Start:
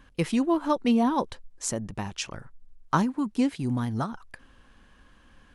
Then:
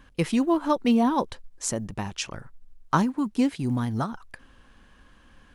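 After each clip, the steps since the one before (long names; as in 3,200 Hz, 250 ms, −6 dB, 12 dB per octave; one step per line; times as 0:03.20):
floating-point word with a short mantissa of 6 bits
level +1.5 dB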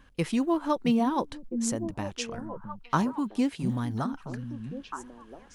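echo through a band-pass that steps 664 ms, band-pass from 170 Hz, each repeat 1.4 octaves, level −4 dB
level −3.5 dB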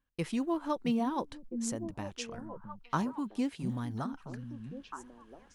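noise gate with hold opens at −42 dBFS
level −6 dB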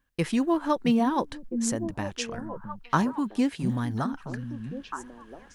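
parametric band 1,700 Hz +5 dB 0.32 octaves
level +7.5 dB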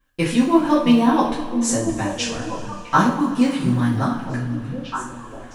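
coupled-rooms reverb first 0.41 s, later 3 s, from −18 dB, DRR −9 dB
level −1 dB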